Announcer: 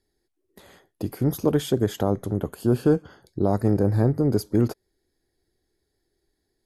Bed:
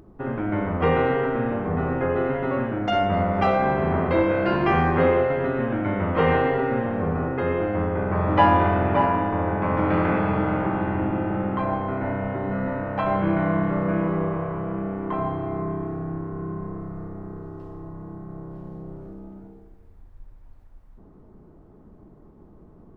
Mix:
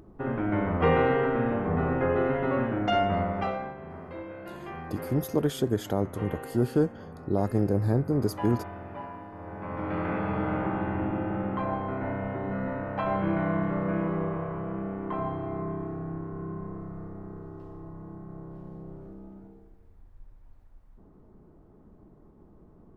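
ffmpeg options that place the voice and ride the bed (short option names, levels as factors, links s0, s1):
-filter_complex "[0:a]adelay=3900,volume=0.596[s0];[1:a]volume=4.22,afade=t=out:st=2.9:d=0.84:silence=0.133352,afade=t=in:st=9.36:d=1.21:silence=0.188365[s1];[s0][s1]amix=inputs=2:normalize=0"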